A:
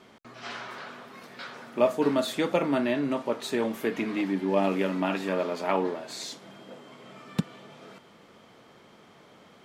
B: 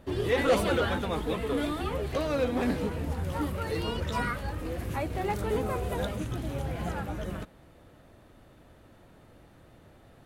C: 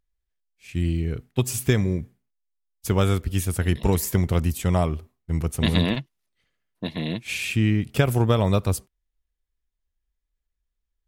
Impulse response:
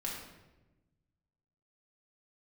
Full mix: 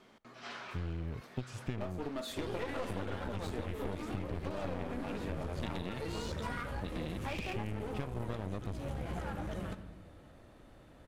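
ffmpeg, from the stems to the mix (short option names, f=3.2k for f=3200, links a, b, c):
-filter_complex "[0:a]volume=-7.5dB,asplit=2[a][b];[b]volume=-23dB[c];[1:a]lowpass=11k,adynamicequalizer=threshold=0.00355:dfrequency=4600:dqfactor=0.71:tfrequency=4600:tqfactor=0.71:attack=5:release=100:ratio=0.375:range=3:mode=cutabove:tftype=bell,adelay=2300,volume=-4dB,asplit=2[d][e];[e]volume=-9.5dB[f];[2:a]lowpass=3.4k,volume=-7.5dB[g];[3:a]atrim=start_sample=2205[h];[c][f]amix=inputs=2:normalize=0[i];[i][h]afir=irnorm=-1:irlink=0[j];[a][d][g][j]amix=inputs=4:normalize=0,aeval=exprs='clip(val(0),-1,0.0158)':c=same,acompressor=threshold=-34dB:ratio=6"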